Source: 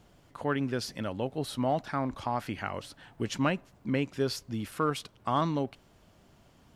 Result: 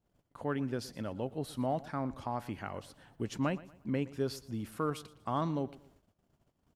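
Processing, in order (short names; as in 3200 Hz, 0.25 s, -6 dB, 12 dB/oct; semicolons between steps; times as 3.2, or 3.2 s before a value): bell 3100 Hz -6 dB 2.9 oct; feedback echo 0.118 s, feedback 35%, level -19 dB; gate -58 dBFS, range -19 dB; gain -3.5 dB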